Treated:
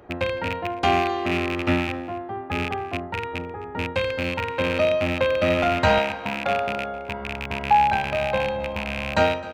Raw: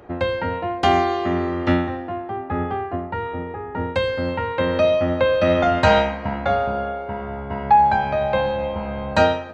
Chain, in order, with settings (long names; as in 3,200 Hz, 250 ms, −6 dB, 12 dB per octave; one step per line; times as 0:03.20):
loose part that buzzes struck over −28 dBFS, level −12 dBFS
0:05.98–0:06.93: high-pass filter 210 Hz → 100 Hz 12 dB per octave
single-tap delay 261 ms −19 dB
level −3.5 dB